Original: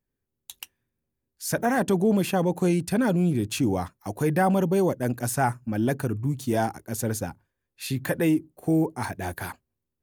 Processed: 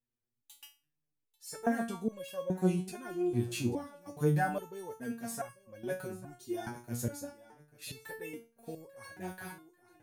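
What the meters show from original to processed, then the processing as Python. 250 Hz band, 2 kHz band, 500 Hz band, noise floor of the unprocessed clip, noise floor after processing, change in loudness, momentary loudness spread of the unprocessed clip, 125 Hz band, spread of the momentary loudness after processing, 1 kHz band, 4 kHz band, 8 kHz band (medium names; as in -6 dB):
-12.0 dB, -10.5 dB, -11.0 dB, -83 dBFS, -85 dBFS, -11.0 dB, 13 LU, -10.5 dB, 17 LU, -11.5 dB, -10.5 dB, -11.0 dB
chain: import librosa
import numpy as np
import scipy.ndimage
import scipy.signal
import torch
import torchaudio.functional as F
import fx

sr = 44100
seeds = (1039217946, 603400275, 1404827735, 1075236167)

y = fx.echo_feedback(x, sr, ms=841, feedback_pct=31, wet_db=-18.0)
y = fx.resonator_held(y, sr, hz=2.4, low_hz=120.0, high_hz=550.0)
y = y * 10.0 ** (1.5 / 20.0)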